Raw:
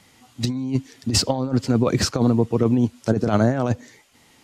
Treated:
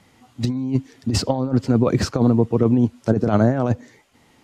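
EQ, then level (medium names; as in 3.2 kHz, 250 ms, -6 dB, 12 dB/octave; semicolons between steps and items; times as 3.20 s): treble shelf 2.2 kHz -9 dB; +2.0 dB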